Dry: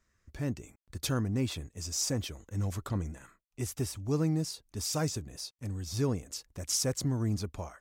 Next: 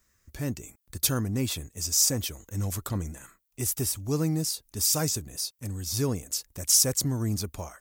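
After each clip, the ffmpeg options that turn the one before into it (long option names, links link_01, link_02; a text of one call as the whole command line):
ffmpeg -i in.wav -af "aemphasis=mode=production:type=50fm,volume=2.5dB" out.wav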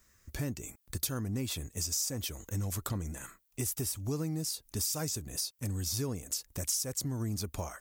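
ffmpeg -i in.wav -af "acompressor=threshold=-35dB:ratio=5,volume=3dB" out.wav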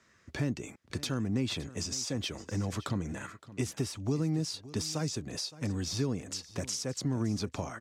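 ffmpeg -i in.wav -filter_complex "[0:a]highpass=140,lowpass=3900,acrossover=split=320|3000[link_01][link_02][link_03];[link_02]acompressor=threshold=-43dB:ratio=6[link_04];[link_01][link_04][link_03]amix=inputs=3:normalize=0,aecho=1:1:567:0.133,volume=6.5dB" out.wav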